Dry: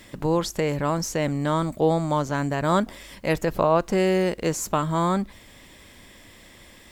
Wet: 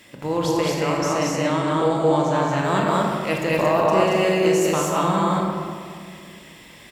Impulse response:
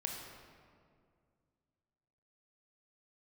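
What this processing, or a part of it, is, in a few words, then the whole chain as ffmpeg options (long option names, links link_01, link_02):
stadium PA: -filter_complex "[0:a]asettb=1/sr,asplit=3[link_01][link_02][link_03];[link_01]atrim=end=0.734[link_04];[link_02]atrim=start=0.73:end=2.56,asetpts=PTS-STARTPTS,afade=type=in:duration=0.004:curve=qsin,afade=type=out:start_time=1.826:duration=0.004:curve=qsin,lowpass=11000[link_05];[link_03]atrim=start=2.556[link_06];[link_04][link_05]acrossfade=duration=0.004:curve1=hsin:curve2=qsin[link_07];[link_07][link_06]acrossfade=duration=0.004:curve1=qsin:curve2=hsin,highpass=frequency=170:poles=1,equalizer=frequency=2700:width_type=o:width=0.39:gain=5.5,aecho=1:1:189.5|227.4:0.562|0.891[link_08];[1:a]atrim=start_sample=2205[link_09];[link_08][link_09]afir=irnorm=-1:irlink=0"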